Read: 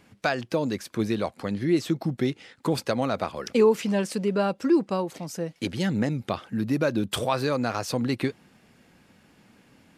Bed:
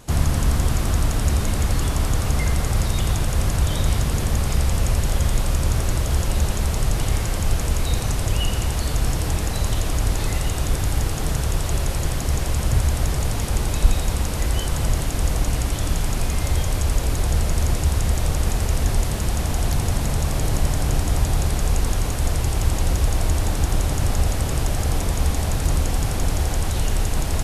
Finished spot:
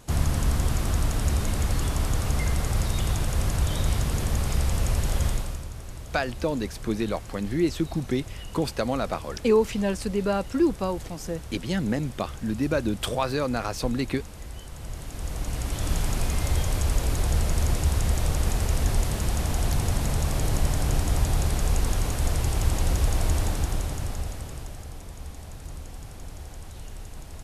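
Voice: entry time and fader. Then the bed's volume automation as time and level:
5.90 s, -1.0 dB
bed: 5.28 s -4.5 dB
5.70 s -17.5 dB
14.73 s -17.5 dB
15.94 s -3.5 dB
23.40 s -3.5 dB
24.94 s -18.5 dB

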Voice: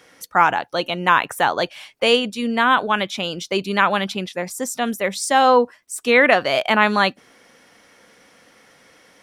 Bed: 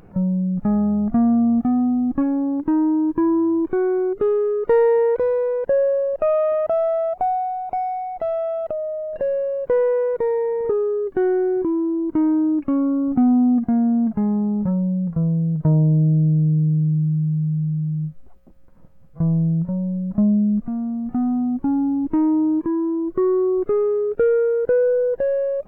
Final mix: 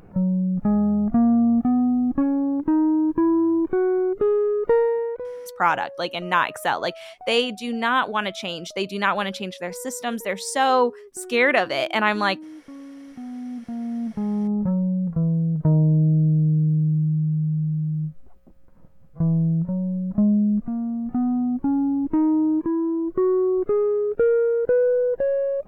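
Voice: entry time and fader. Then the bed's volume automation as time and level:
5.25 s, -4.5 dB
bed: 4.68 s -1 dB
5.63 s -20.5 dB
13.19 s -20.5 dB
14.51 s -1.5 dB

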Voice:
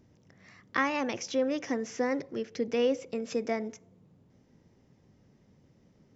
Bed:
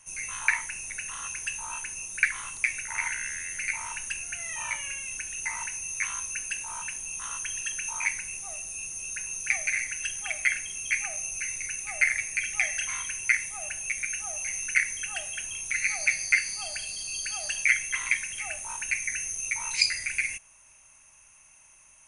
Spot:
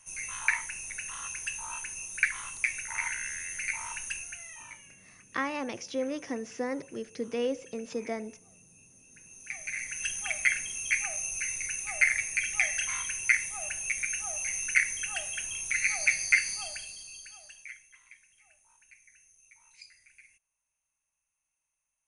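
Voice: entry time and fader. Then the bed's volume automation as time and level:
4.60 s, -3.5 dB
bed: 4.15 s -2.5 dB
5.01 s -22 dB
9.08 s -22 dB
10.07 s -0.5 dB
16.53 s -0.5 dB
18.00 s -28.5 dB

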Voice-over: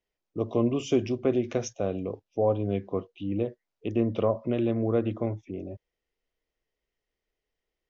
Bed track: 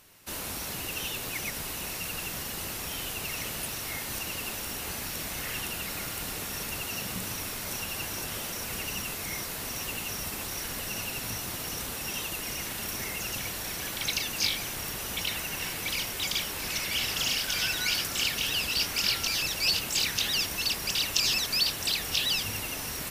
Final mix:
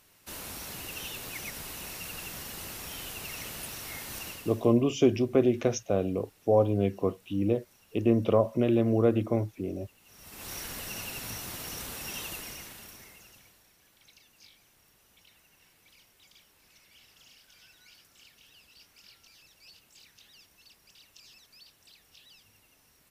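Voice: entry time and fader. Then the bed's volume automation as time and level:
4.10 s, +2.0 dB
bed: 4.28 s -5 dB
4.83 s -27.5 dB
9.99 s -27.5 dB
10.50 s -4 dB
12.32 s -4 dB
13.73 s -29 dB

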